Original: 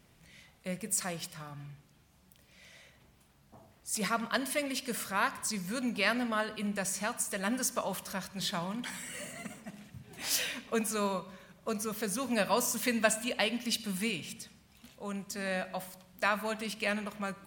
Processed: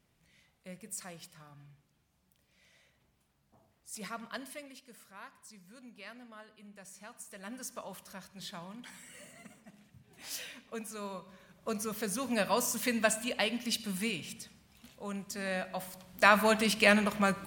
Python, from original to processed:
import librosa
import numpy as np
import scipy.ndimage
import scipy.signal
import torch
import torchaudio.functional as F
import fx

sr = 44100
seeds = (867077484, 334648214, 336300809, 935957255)

y = fx.gain(x, sr, db=fx.line((4.42, -10.0), (4.87, -19.5), (6.66, -19.5), (7.73, -10.0), (11.01, -10.0), (11.7, -1.0), (15.72, -1.0), (16.4, 8.5)))